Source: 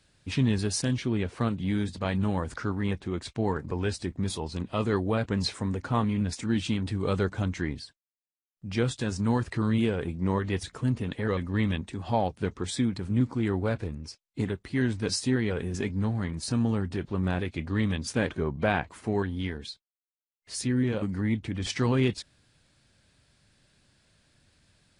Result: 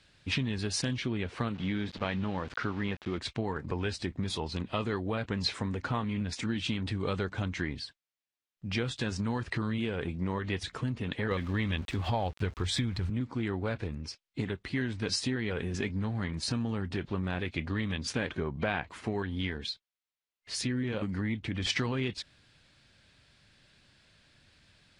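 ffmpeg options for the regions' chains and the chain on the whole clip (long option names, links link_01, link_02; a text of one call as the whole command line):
ffmpeg -i in.wav -filter_complex "[0:a]asettb=1/sr,asplit=3[link_01][link_02][link_03];[link_01]atrim=end=1.544[link_04];[link_02]atrim=start=1.54:end=3.18,asetpts=PTS-STARTPTS,afade=type=in:duration=0.004:curve=qsin,afade=type=out:start_time=1.636:duration=0.004:curve=qsin,equalizer=frequency=72:width_type=o:width=1.2:gain=-4.5,aeval=exprs='val(0)*gte(abs(val(0)),0.0075)':channel_layout=same,lowpass=4700[link_05];[link_03]atrim=start=3.176[link_06];[link_04][link_05]acrossfade=duration=0.004:curve1=hsin:curve2=qsin[link_07];[link_07][link_06]acrossfade=duration=0.004:curve1=qsin:curve2=hsin,asettb=1/sr,asplit=3[link_08][link_09][link_10];[link_08]atrim=end=11.314[link_11];[link_09]atrim=start=11.31:end=13.1,asetpts=PTS-STARTPTS,afade=type=in:duration=0.004:curve=qsin,afade=type=out:start_time=1.786:duration=0.004:curve=qsin,asubboost=boost=10:cutoff=94,acontrast=45,aeval=exprs='val(0)*gte(abs(val(0)),0.00891)':channel_layout=same[link_12];[link_10]atrim=start=13.096[link_13];[link_11][link_12]acrossfade=duration=0.004:curve1=hsin:curve2=qsin[link_14];[link_14][link_13]acrossfade=duration=0.004:curve1=qsin:curve2=hsin,highshelf=frequency=6500:gain=-11,acompressor=threshold=-29dB:ratio=6,equalizer=frequency=3200:width_type=o:width=2.5:gain=7.5" out.wav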